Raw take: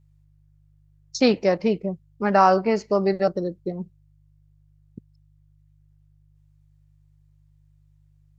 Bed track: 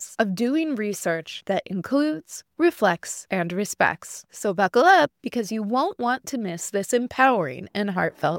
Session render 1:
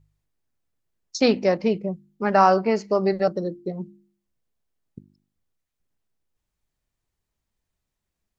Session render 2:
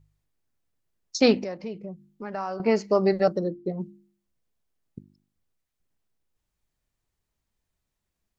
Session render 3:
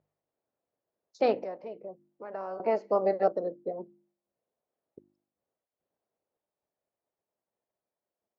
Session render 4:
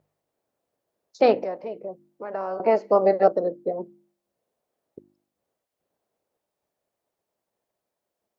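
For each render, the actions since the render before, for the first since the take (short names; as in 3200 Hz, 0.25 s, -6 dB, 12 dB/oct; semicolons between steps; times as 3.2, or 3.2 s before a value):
de-hum 50 Hz, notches 7
1.44–2.6 compressor 2:1, threshold -41 dBFS; 3.39–3.8 high shelf 4000 Hz -9.5 dB
spectral limiter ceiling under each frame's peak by 13 dB; band-pass 580 Hz, Q 2.1
gain +7.5 dB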